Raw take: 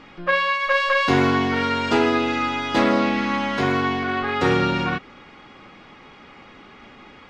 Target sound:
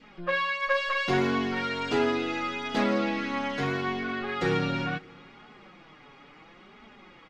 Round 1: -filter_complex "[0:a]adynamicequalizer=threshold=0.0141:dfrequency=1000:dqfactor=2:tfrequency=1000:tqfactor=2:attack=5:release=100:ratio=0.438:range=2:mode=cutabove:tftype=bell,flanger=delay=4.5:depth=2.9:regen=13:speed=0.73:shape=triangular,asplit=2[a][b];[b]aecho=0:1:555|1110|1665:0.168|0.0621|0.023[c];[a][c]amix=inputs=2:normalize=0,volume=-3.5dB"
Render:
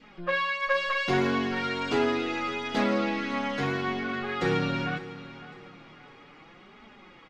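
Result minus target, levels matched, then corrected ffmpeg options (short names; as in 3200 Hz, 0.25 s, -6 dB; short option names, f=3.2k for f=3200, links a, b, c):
echo-to-direct +11.5 dB
-filter_complex "[0:a]adynamicequalizer=threshold=0.0141:dfrequency=1000:dqfactor=2:tfrequency=1000:tqfactor=2:attack=5:release=100:ratio=0.438:range=2:mode=cutabove:tftype=bell,flanger=delay=4.5:depth=2.9:regen=13:speed=0.73:shape=triangular,asplit=2[a][b];[b]aecho=0:1:555|1110:0.0447|0.0165[c];[a][c]amix=inputs=2:normalize=0,volume=-3.5dB"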